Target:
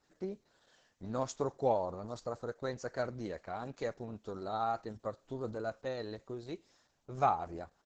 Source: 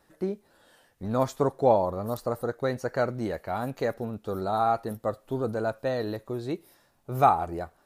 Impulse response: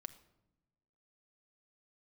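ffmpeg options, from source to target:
-af "aemphasis=mode=production:type=50fm,aresample=16000,aresample=44100,volume=-8.5dB" -ar 48000 -c:a libopus -b:a 10k

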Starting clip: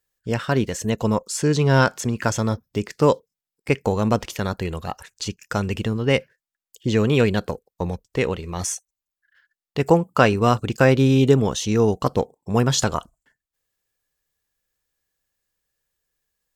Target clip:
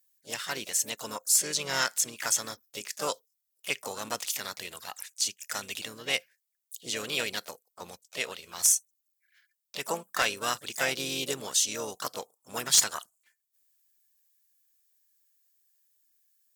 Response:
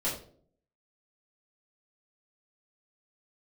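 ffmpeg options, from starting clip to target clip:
-filter_complex "[0:a]asplit=3[a][b][c];[b]asetrate=52444,aresample=44100,atempo=0.840896,volume=-12dB[d];[c]asetrate=58866,aresample=44100,atempo=0.749154,volume=-10dB[e];[a][d][e]amix=inputs=3:normalize=0,aderivative,aeval=exprs='0.15*(abs(mod(val(0)/0.15+3,4)-2)-1)':c=same,volume=5dB"

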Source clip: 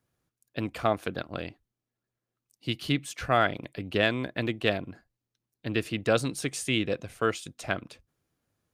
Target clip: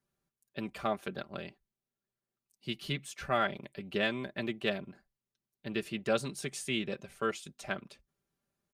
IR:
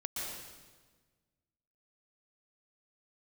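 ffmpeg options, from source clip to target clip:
-af "aecho=1:1:5.1:0.69,volume=-7.5dB"

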